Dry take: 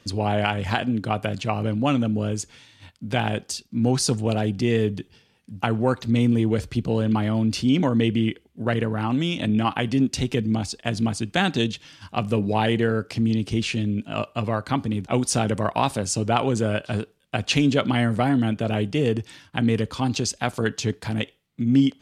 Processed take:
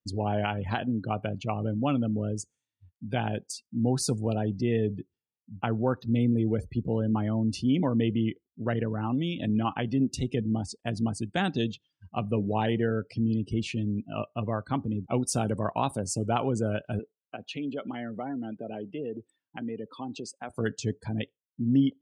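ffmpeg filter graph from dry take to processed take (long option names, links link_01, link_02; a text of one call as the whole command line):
ffmpeg -i in.wav -filter_complex "[0:a]asettb=1/sr,asplit=3[link_01][link_02][link_03];[link_01]atrim=end=16.994[link_04];[link_02]atrim=start=16.99:end=20.5,asetpts=PTS-STARTPTS,afade=type=in:duration=0.004:curve=qsin,afade=type=out:start_time=3.506:duration=0.004:curve=qsin,highpass=240,equalizer=frequency=6000:width=1.3:gain=-6.5,acompressor=threshold=-29dB:ratio=2:attack=3.2:release=140:knee=1:detection=peak[link_05];[link_03]atrim=start=20.496[link_06];[link_04][link_05]acrossfade=duration=0.004:curve1=hsin:curve2=qsin[link_07];[link_07][link_06]acrossfade=duration=0.004:curve1=qsin:curve2=hsin,aemphasis=mode=production:type=50fm,afftdn=noise_reduction=33:noise_floor=-32,highshelf=frequency=2400:gain=-11,volume=-4.5dB" out.wav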